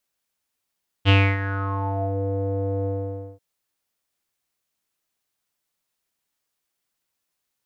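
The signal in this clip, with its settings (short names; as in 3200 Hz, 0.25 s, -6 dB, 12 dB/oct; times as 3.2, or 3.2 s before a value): synth note square G2 12 dB/oct, low-pass 550 Hz, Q 6.7, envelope 2.5 oct, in 1.12 s, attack 41 ms, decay 0.28 s, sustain -13 dB, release 0.53 s, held 1.81 s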